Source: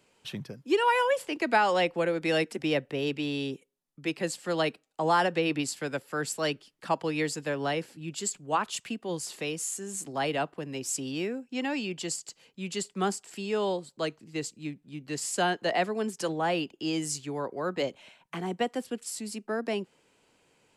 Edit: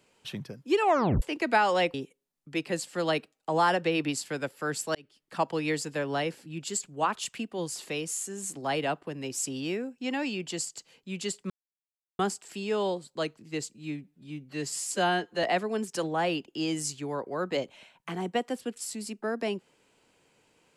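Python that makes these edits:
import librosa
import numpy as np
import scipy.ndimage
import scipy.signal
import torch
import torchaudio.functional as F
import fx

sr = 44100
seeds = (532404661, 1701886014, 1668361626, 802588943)

y = fx.edit(x, sr, fx.tape_stop(start_s=0.79, length_s=0.43),
    fx.cut(start_s=1.94, length_s=1.51),
    fx.fade_in_span(start_s=6.46, length_s=0.45),
    fx.insert_silence(at_s=13.01, length_s=0.69),
    fx.stretch_span(start_s=14.56, length_s=1.13, factor=1.5), tone=tone)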